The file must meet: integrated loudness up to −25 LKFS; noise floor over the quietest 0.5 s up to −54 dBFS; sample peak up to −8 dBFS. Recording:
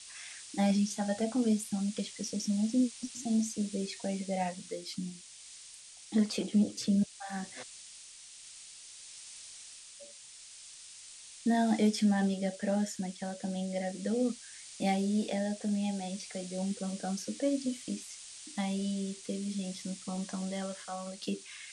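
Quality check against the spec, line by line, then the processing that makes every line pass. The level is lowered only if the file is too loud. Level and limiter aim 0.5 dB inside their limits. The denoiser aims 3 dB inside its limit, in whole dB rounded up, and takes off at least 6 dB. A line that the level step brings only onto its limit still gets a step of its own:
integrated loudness −33.5 LKFS: in spec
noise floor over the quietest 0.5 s −52 dBFS: out of spec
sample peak −17.5 dBFS: in spec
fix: broadband denoise 6 dB, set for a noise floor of −52 dBFS

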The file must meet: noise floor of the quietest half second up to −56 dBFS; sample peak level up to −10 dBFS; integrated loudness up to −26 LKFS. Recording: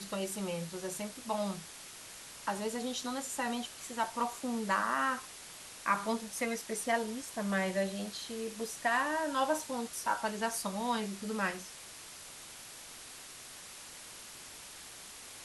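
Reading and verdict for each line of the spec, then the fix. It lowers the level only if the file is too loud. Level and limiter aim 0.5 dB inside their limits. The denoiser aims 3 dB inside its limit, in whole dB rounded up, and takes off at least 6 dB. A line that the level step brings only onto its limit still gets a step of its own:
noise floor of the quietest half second −49 dBFS: out of spec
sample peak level −17.0 dBFS: in spec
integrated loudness −35.0 LKFS: in spec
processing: broadband denoise 10 dB, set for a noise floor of −49 dBFS

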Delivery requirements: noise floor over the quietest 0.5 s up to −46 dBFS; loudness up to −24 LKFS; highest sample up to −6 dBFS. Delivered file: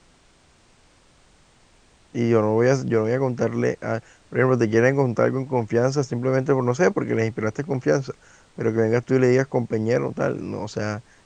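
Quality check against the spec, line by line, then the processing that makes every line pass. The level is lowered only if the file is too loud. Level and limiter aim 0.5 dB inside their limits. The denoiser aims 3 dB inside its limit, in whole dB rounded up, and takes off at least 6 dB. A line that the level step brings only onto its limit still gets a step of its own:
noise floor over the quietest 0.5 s −57 dBFS: in spec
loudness −22.0 LKFS: out of spec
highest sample −4.0 dBFS: out of spec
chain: level −2.5 dB

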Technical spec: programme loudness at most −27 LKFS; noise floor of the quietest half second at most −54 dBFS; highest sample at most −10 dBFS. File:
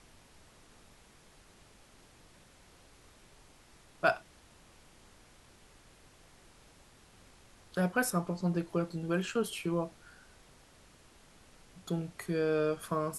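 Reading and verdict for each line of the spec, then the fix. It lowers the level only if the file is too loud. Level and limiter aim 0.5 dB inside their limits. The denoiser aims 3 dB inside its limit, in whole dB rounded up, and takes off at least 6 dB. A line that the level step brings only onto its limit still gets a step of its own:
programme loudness −33.5 LKFS: in spec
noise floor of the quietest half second −60 dBFS: in spec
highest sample −14.0 dBFS: in spec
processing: no processing needed

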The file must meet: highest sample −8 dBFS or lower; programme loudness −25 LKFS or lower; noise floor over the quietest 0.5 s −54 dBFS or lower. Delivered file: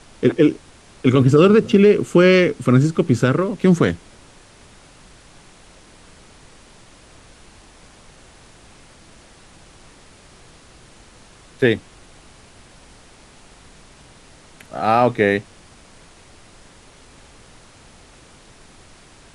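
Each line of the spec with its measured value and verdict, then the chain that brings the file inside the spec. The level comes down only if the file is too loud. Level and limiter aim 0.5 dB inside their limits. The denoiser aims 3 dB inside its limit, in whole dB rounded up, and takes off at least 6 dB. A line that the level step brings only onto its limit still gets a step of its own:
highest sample −3.0 dBFS: out of spec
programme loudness −16.0 LKFS: out of spec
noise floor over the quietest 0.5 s −47 dBFS: out of spec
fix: level −9.5 dB

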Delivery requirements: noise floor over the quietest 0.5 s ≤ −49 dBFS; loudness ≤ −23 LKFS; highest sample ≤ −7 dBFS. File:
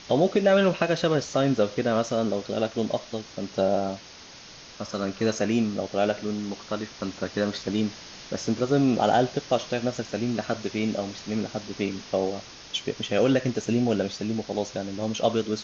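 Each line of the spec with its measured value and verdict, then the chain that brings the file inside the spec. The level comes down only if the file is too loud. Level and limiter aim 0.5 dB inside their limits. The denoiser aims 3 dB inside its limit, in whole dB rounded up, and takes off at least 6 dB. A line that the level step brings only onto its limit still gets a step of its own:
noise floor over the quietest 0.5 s −46 dBFS: out of spec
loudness −26.5 LKFS: in spec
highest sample −8.5 dBFS: in spec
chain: broadband denoise 6 dB, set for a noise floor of −46 dBFS

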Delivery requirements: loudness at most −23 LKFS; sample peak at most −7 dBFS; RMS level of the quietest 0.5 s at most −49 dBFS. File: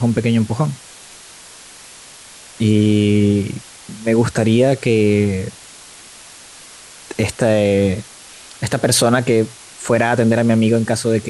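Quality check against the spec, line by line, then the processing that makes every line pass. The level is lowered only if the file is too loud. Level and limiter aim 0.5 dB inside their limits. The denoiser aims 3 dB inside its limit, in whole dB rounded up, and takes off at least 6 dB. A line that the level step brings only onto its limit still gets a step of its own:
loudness −16.5 LKFS: out of spec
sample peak −3.5 dBFS: out of spec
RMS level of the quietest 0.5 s −40 dBFS: out of spec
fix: broadband denoise 6 dB, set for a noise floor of −40 dBFS
level −7 dB

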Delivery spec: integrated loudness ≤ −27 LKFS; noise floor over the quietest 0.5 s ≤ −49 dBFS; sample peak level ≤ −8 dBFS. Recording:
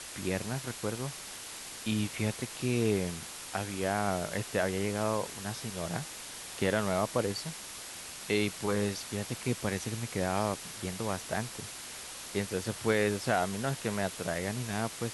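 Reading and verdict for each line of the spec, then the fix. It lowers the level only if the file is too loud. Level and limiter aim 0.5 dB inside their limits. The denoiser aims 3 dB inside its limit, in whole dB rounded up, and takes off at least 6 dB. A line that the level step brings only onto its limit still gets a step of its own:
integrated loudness −33.5 LKFS: in spec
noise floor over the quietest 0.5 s −44 dBFS: out of spec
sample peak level −13.5 dBFS: in spec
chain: broadband denoise 8 dB, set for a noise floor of −44 dBFS

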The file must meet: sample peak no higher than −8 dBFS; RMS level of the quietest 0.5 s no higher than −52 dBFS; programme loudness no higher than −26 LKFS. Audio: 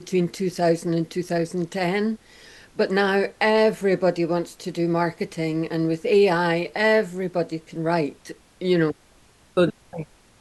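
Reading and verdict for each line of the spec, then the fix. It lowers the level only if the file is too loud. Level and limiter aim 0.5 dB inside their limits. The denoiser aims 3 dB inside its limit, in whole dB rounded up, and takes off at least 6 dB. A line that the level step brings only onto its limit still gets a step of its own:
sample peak −5.5 dBFS: out of spec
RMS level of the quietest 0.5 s −55 dBFS: in spec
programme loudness −23.0 LKFS: out of spec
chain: level −3.5 dB

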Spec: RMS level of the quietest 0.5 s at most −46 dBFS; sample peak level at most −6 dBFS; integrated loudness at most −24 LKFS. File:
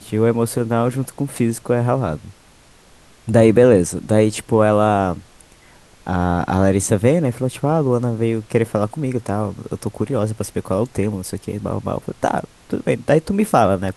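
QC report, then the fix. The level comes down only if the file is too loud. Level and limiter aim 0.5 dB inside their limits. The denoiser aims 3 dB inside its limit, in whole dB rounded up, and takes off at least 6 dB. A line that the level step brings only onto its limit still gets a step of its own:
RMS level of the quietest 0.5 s −49 dBFS: in spec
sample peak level −1.5 dBFS: out of spec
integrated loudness −19.0 LKFS: out of spec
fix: level −5.5 dB

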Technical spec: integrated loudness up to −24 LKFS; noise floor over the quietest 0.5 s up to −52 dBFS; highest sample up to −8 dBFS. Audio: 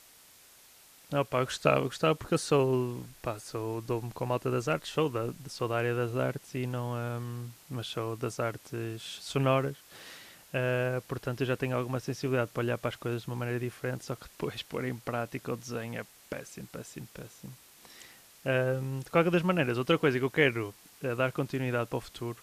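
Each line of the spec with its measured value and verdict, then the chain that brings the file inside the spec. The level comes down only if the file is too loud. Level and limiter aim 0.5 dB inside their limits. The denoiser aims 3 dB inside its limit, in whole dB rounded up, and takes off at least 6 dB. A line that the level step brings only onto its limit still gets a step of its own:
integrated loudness −31.5 LKFS: in spec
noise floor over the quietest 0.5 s −57 dBFS: in spec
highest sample −9.0 dBFS: in spec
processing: no processing needed

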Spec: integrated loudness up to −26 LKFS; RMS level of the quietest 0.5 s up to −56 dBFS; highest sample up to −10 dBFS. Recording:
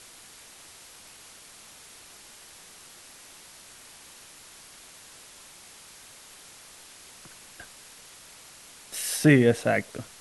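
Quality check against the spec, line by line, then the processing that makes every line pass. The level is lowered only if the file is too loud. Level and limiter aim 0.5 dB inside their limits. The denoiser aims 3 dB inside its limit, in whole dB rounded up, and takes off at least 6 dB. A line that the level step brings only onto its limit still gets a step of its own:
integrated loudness −23.5 LKFS: out of spec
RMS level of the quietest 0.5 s −49 dBFS: out of spec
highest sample −6.0 dBFS: out of spec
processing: broadband denoise 7 dB, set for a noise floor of −49 dBFS
level −3 dB
brickwall limiter −10.5 dBFS

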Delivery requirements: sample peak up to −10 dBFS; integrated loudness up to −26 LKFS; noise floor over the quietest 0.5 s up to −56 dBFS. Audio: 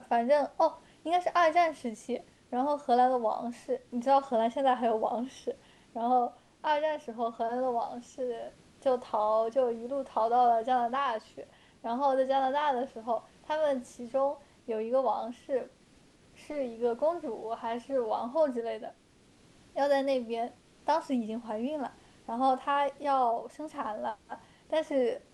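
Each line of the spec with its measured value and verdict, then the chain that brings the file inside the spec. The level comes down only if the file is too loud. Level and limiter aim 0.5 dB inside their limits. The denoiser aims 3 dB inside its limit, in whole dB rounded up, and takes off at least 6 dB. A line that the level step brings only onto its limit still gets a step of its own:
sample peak −14.5 dBFS: in spec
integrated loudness −30.5 LKFS: in spec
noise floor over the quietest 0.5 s −61 dBFS: in spec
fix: no processing needed

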